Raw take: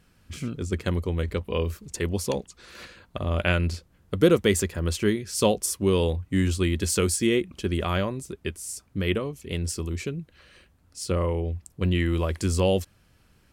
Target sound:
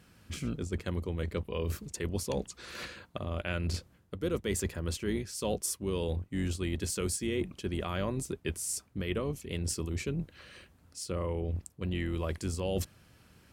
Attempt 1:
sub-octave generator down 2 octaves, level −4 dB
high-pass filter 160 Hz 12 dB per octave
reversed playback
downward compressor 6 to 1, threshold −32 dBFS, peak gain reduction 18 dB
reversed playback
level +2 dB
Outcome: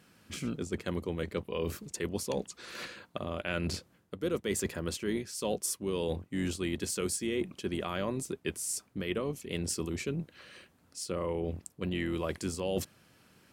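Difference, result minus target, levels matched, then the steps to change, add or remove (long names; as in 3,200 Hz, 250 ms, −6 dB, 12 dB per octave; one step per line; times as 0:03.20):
125 Hz band −4.5 dB
change: high-pass filter 68 Hz 12 dB per octave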